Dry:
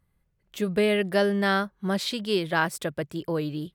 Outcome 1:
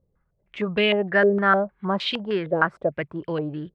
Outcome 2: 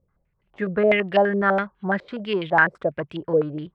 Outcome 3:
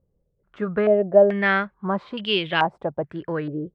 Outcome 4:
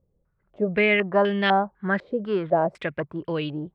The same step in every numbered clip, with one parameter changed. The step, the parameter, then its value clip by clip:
low-pass on a step sequencer, speed: 6.5, 12, 2.3, 4 Hertz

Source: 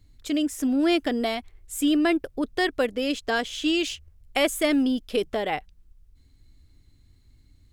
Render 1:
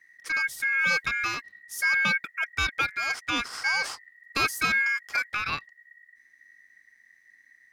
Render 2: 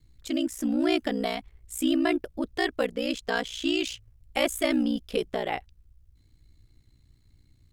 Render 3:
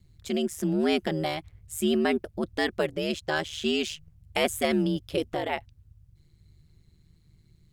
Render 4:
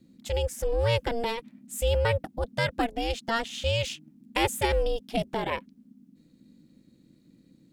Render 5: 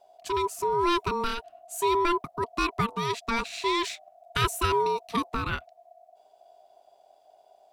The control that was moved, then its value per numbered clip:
ring modulation, frequency: 1,900, 30, 77, 230, 690 Hertz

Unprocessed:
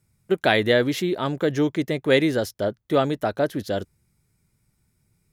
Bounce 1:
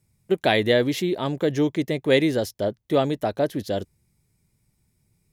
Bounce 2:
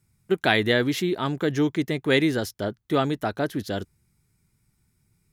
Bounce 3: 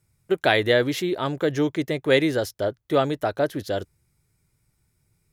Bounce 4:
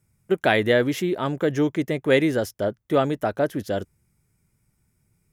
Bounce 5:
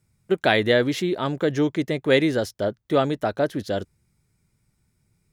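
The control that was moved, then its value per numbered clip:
parametric band, centre frequency: 1,400, 560, 210, 4,100, 13,000 Hertz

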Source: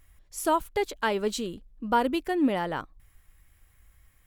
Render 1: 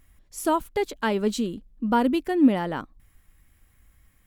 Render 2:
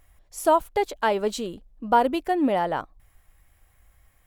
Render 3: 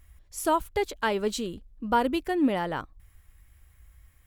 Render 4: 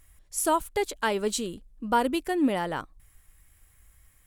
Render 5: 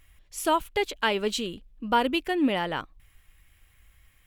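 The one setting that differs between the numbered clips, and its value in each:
parametric band, centre frequency: 230, 700, 66, 9,200, 2,800 Hertz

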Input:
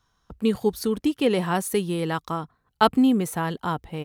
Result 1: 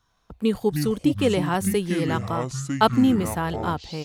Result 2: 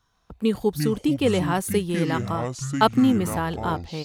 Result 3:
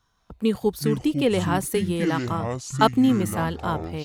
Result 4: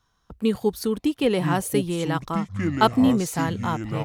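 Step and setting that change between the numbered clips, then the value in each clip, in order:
delay with pitch and tempo change per echo, delay time: 84, 123, 181, 773 milliseconds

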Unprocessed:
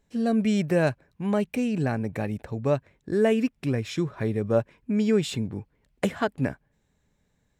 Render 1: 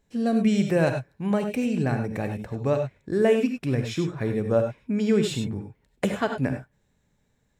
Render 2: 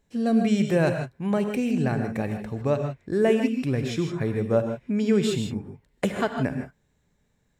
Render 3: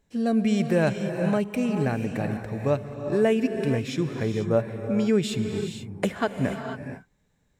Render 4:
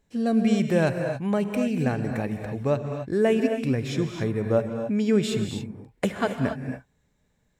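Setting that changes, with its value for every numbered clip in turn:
reverb whose tail is shaped and stops, gate: 120, 180, 510, 300 milliseconds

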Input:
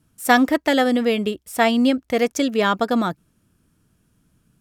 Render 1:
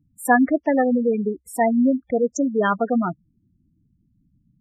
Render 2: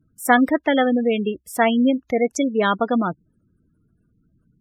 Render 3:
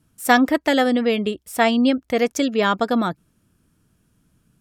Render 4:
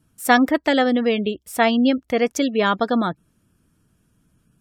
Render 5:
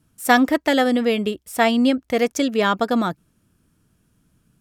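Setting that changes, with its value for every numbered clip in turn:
gate on every frequency bin, under each frame's peak: −10, −20, −45, −35, −60 decibels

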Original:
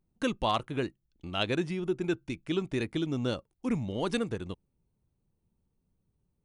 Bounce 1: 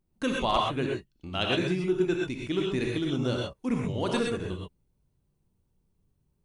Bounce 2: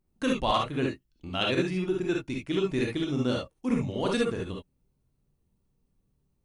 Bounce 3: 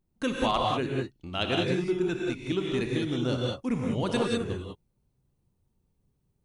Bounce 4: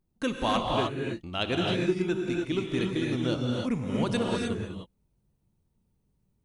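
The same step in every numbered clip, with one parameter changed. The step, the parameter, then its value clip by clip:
reverb whose tail is shaped and stops, gate: 150, 90, 220, 330 milliseconds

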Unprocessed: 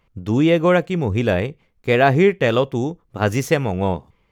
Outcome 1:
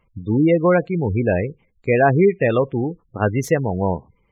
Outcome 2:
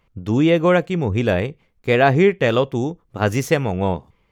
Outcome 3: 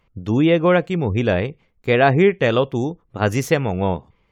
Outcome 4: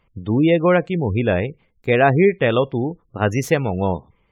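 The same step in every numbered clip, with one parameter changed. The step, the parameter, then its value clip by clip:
gate on every frequency bin, under each frame's peak: −20, −60, −45, −30 decibels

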